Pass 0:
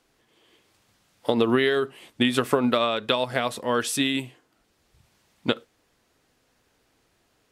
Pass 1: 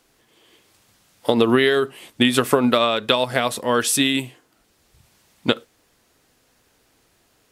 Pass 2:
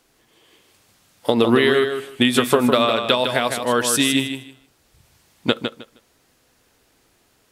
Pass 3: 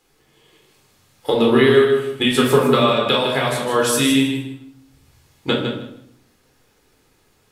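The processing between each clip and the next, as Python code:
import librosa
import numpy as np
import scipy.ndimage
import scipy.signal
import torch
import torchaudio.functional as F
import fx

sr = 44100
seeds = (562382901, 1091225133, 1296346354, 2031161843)

y1 = fx.high_shelf(x, sr, hz=6900.0, db=7.0)
y1 = y1 * 10.0 ** (4.5 / 20.0)
y2 = fx.echo_feedback(y1, sr, ms=156, feedback_pct=19, wet_db=-7)
y3 = fx.room_shoebox(y2, sr, seeds[0], volume_m3=940.0, walls='furnished', distance_m=4.0)
y3 = y3 * 10.0 ** (-4.5 / 20.0)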